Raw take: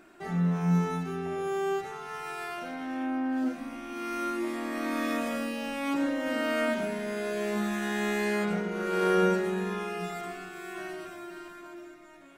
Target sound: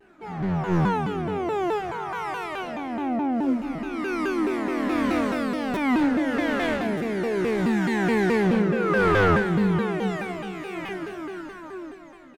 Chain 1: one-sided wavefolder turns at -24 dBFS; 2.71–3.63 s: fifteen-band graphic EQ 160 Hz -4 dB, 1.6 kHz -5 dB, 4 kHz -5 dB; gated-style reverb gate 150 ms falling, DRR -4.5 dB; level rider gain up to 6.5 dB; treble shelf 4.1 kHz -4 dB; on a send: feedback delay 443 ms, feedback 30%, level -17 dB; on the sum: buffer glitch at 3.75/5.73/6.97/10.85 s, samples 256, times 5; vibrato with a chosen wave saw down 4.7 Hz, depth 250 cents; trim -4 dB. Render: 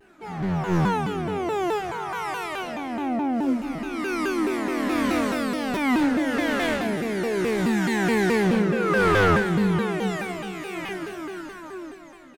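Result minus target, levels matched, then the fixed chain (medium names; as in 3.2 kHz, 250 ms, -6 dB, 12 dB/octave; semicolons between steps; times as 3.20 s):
8 kHz band +7.0 dB
one-sided wavefolder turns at -24 dBFS; 2.71–3.63 s: fifteen-band graphic EQ 160 Hz -4 dB, 1.6 kHz -5 dB, 4 kHz -5 dB; gated-style reverb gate 150 ms falling, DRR -4.5 dB; level rider gain up to 6.5 dB; treble shelf 4.1 kHz -13.5 dB; on a send: feedback delay 443 ms, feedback 30%, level -17 dB; on the sum: buffer glitch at 3.75/5.73/6.97/10.85 s, samples 256, times 5; vibrato with a chosen wave saw down 4.7 Hz, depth 250 cents; trim -4 dB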